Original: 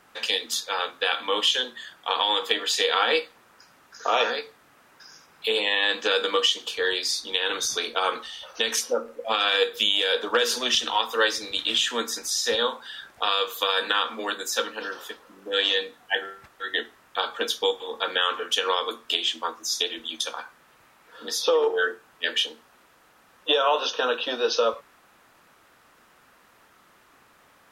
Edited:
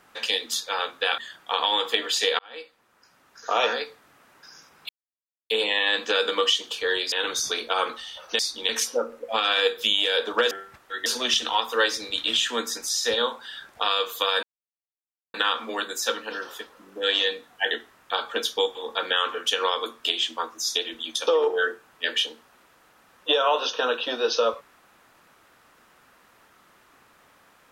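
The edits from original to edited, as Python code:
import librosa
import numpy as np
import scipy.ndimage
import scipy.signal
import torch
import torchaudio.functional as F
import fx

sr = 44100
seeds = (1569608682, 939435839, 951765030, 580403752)

y = fx.edit(x, sr, fx.cut(start_s=1.18, length_s=0.57),
    fx.fade_in_span(start_s=2.96, length_s=1.26),
    fx.insert_silence(at_s=5.46, length_s=0.61),
    fx.move(start_s=7.08, length_s=0.3, to_s=8.65),
    fx.insert_silence(at_s=13.84, length_s=0.91),
    fx.move(start_s=16.21, length_s=0.55, to_s=10.47),
    fx.cut(start_s=20.32, length_s=1.15), tone=tone)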